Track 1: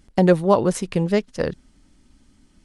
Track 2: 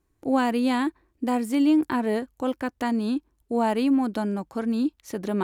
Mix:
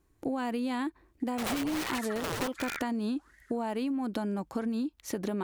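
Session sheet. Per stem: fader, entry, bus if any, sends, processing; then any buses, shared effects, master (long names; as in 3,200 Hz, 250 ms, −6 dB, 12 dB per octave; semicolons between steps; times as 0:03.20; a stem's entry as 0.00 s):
0.0 dB, 1.20 s, no send, echo send −6.5 dB, high-shelf EQ 4,900 Hz +4.5 dB; wrap-around overflow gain 14 dB; ring modulator whose carrier an LFO sweeps 1,100 Hz, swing 75%, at 1.4 Hz; automatic ducking −12 dB, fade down 1.65 s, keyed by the second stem
+2.5 dB, 0.00 s, no send, no echo send, downward compressor, threshold −25 dBFS, peak gain reduction 8.5 dB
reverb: not used
echo: single-tap delay 82 ms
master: downward compressor, threshold −29 dBFS, peak gain reduction 9.5 dB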